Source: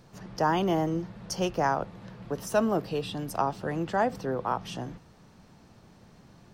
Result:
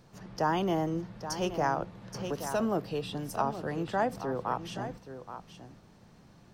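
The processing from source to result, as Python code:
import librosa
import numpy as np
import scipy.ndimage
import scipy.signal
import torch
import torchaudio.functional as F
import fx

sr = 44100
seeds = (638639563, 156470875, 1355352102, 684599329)

y = x + 10.0 ** (-11.0 / 20.0) * np.pad(x, (int(825 * sr / 1000.0), 0))[:len(x)]
y = fx.band_squash(y, sr, depth_pct=70, at=(2.14, 2.6))
y = F.gain(torch.from_numpy(y), -3.0).numpy()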